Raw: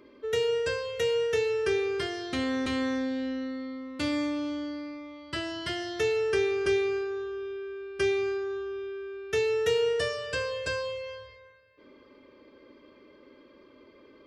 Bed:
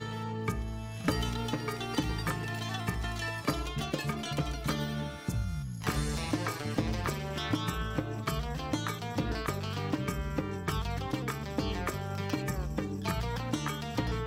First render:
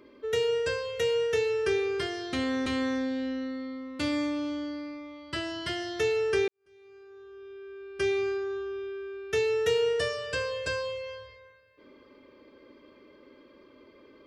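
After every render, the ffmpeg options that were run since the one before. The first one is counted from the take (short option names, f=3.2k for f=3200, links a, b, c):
-filter_complex "[0:a]asplit=2[a][b];[a]atrim=end=6.48,asetpts=PTS-STARTPTS,afade=t=out:st=6.476:d=0.004:c=hsin[c];[b]atrim=start=6.48,asetpts=PTS-STARTPTS,afade=t=in:d=1.7:c=qua[d];[c][d]concat=n=2:v=0:a=1"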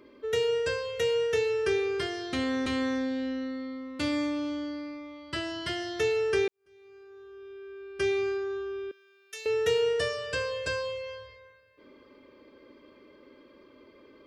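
-filter_complex "[0:a]asettb=1/sr,asplit=3[a][b][c];[a]atrim=end=8.914[d];[b]atrim=start=8.91:end=9.46,asetpts=PTS-STARTPTS,afade=t=in:d=0.004:c=qsin,afade=t=out:st=0.546:d=0.004:c=qsin,aderivative[e];[c]atrim=start=9.456[f];[d][e]acrossfade=d=0.004:c1=hsin:c2=qsin[g];[g][f]acrossfade=d=0.004:c1=qsin:c2=hsin"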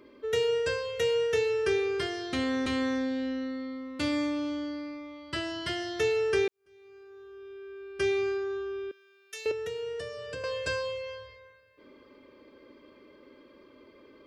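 -filter_complex "[0:a]asettb=1/sr,asplit=3[a][b][c];[a]atrim=end=9.514[d];[b]atrim=start=9.51:end=10.44,asetpts=PTS-STARTPTS,afade=t=in:d=0.004:c=qsin,afade=t=out:st=0.926:d=0.004:c=qsin,acrossover=split=100|570[e][f][g];[e]acompressor=threshold=-58dB:ratio=4[h];[f]acompressor=threshold=-38dB:ratio=4[i];[g]acompressor=threshold=-44dB:ratio=4[j];[h][i][j]amix=inputs=3:normalize=0[k];[c]atrim=start=10.436[l];[d][k]acrossfade=d=0.004:c1=hsin:c2=qsin[m];[m][l]acrossfade=d=0.004:c1=qsin:c2=hsin"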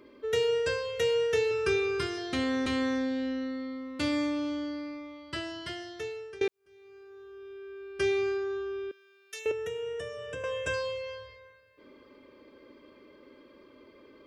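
-filter_complex "[0:a]asettb=1/sr,asplit=3[a][b][c];[a]atrim=end=1.514[d];[b]atrim=start=1.51:end=2.18,asetpts=PTS-STARTPTS,afade=t=in:d=0.004:c=qsin,afade=t=out:st=0.666:d=0.004:c=qsin,aecho=1:1:0.8:0.59,atrim=end_sample=29547[e];[c]atrim=start=2.176[f];[d][e]acrossfade=d=0.004:c1=hsin:c2=qsin[g];[g][f]acrossfade=d=0.004:c1=qsin:c2=hsin,asettb=1/sr,asplit=3[h][i][j];[h]atrim=end=9.394[k];[i]atrim=start=9.39:end=10.74,asetpts=PTS-STARTPTS,afade=t=in:d=0.004:c=qsin,afade=t=out:st=1.346:d=0.004:c=qsin,asuperstop=centerf=4500:order=4:qfactor=2.4[l];[j]atrim=start=10.736[m];[k][l]acrossfade=d=0.004:c1=hsin:c2=qsin[n];[n][m]acrossfade=d=0.004:c1=qsin:c2=hsin,asplit=2[o][p];[o]atrim=end=6.41,asetpts=PTS-STARTPTS,afade=t=out:st=4.98:d=1.43:silence=0.0749894[q];[p]atrim=start=6.41,asetpts=PTS-STARTPTS,afade=t=in:d=0.004:c=hsin:silence=0.0749894[r];[q][r]concat=n=2:v=0:a=1"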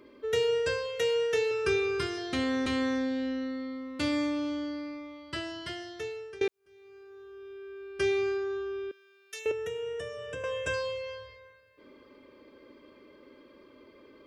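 -filter_complex "[0:a]asettb=1/sr,asplit=3[a][b][c];[a]atrim=end=0.864[d];[b]atrim=start=0.86:end=1.65,asetpts=PTS-STARTPTS,afade=t=in:d=0.004:c=qsin,afade=t=out:st=0.786:d=0.004:c=qsin,highpass=f=220:p=1[e];[c]atrim=start=1.646[f];[d][e]acrossfade=d=0.004:c1=hsin:c2=qsin[g];[g][f]acrossfade=d=0.004:c1=qsin:c2=hsin"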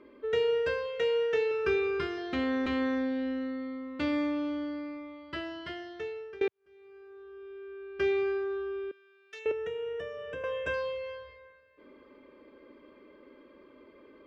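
-af "lowpass=2.7k,equalizer=f=110:t=o:w=0.43:g=-12.5"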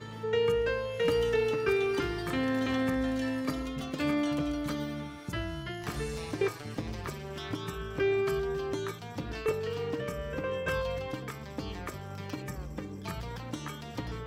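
-filter_complex "[1:a]volume=-5.5dB[a];[0:a][a]amix=inputs=2:normalize=0"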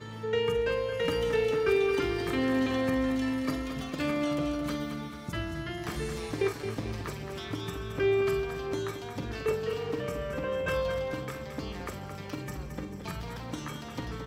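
-filter_complex "[0:a]asplit=2[a][b];[b]adelay=46,volume=-10.5dB[c];[a][c]amix=inputs=2:normalize=0,aecho=1:1:221|442|663|884|1105|1326:0.355|0.188|0.0997|0.0528|0.028|0.0148"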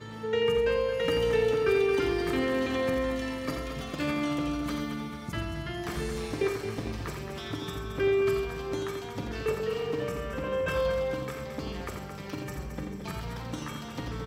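-af "aecho=1:1:86:0.473"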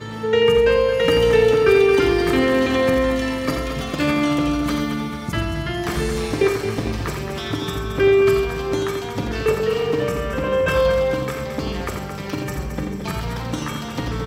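-af "volume=10.5dB"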